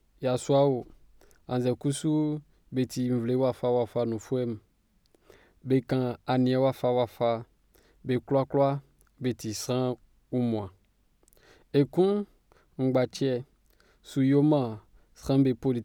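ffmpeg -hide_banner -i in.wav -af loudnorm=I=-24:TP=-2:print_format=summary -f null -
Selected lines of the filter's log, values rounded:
Input Integrated:    -27.6 LUFS
Input True Peak:     -11.8 dBTP
Input LRA:             2.3 LU
Input Threshold:     -38.8 LUFS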